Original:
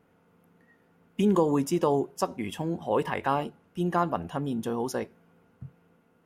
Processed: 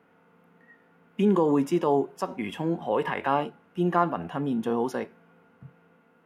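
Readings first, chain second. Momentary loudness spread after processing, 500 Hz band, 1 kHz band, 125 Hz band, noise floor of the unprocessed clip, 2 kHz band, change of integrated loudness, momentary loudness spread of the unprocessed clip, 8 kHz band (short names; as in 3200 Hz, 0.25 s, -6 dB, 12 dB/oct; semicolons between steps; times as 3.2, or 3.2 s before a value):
10 LU, +1.5 dB, +2.0 dB, 0.0 dB, -65 dBFS, +2.5 dB, +1.5 dB, 9 LU, n/a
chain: in parallel at +1 dB: limiter -20 dBFS, peak gain reduction 9 dB; on the sum: three-band isolator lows -15 dB, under 190 Hz, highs -12 dB, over 3000 Hz; harmonic-percussive split harmonic +7 dB; bell 390 Hz -5.5 dB 2.4 oct; gain -3 dB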